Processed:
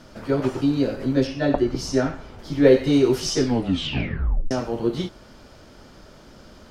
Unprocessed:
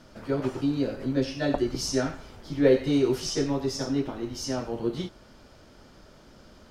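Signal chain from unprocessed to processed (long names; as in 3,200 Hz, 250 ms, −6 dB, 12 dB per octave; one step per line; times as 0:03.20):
0:01.27–0:02.39: high-shelf EQ 3,700 Hz −10 dB
0:03.37: tape stop 1.14 s
level +5.5 dB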